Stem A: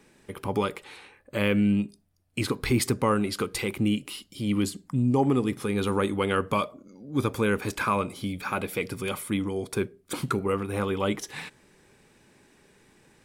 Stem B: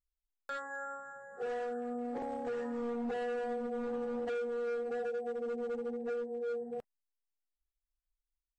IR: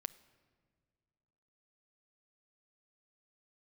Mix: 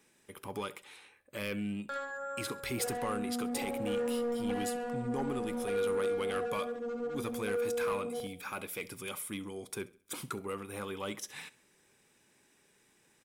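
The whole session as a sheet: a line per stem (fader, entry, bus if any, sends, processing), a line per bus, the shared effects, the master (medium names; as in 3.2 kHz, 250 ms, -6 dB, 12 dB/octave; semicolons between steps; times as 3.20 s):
-10.5 dB, 0.00 s, no send, echo send -21 dB, tilt EQ +2.5 dB/octave; band-stop 4.4 kHz, Q 12
0.0 dB, 1.40 s, no send, echo send -5 dB, none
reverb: none
echo: feedback delay 67 ms, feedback 40%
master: bass shelf 500 Hz +3.5 dB; saturation -26 dBFS, distortion -18 dB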